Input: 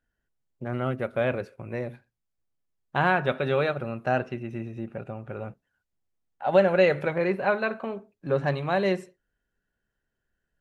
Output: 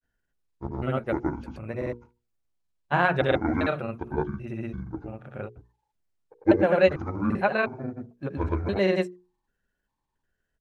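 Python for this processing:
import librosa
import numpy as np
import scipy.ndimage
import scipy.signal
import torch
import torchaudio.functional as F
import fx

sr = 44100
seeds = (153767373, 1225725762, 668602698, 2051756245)

y = fx.pitch_trill(x, sr, semitones=-9.5, every_ms=366)
y = fx.granulator(y, sr, seeds[0], grain_ms=100.0, per_s=20.0, spray_ms=100.0, spread_st=0)
y = fx.hum_notches(y, sr, base_hz=60, count=8)
y = F.gain(torch.from_numpy(y), 2.5).numpy()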